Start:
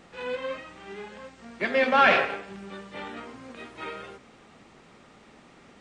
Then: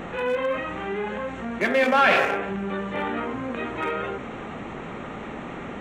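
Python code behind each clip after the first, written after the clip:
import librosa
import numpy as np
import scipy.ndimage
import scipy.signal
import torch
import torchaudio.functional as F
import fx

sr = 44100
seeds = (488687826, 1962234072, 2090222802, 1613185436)

y = fx.wiener(x, sr, points=9)
y = fx.env_flatten(y, sr, amount_pct=50)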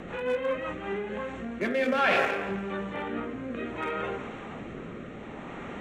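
y = fx.rotary_switch(x, sr, hz=5.5, then_hz=0.6, switch_at_s=0.57)
y = fx.echo_feedback(y, sr, ms=170, feedback_pct=30, wet_db=-13.5)
y = y * librosa.db_to_amplitude(-2.5)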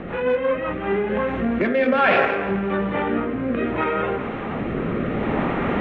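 y = fx.recorder_agc(x, sr, target_db=-20.0, rise_db_per_s=7.6, max_gain_db=30)
y = fx.air_absorb(y, sr, metres=300.0)
y = y * librosa.db_to_amplitude(8.5)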